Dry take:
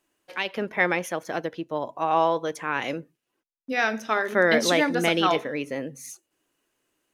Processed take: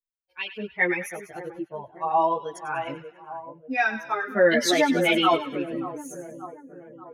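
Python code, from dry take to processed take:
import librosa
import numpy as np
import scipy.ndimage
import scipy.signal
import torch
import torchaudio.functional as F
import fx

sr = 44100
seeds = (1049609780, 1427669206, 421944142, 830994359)

y = fx.bin_expand(x, sr, power=2.0)
y = fx.echo_split(y, sr, split_hz=1200.0, low_ms=584, high_ms=98, feedback_pct=52, wet_db=-11.0)
y = fx.chorus_voices(y, sr, voices=6, hz=0.81, base_ms=13, depth_ms=2.1, mix_pct=55)
y = F.gain(torch.from_numpy(y), 6.0).numpy()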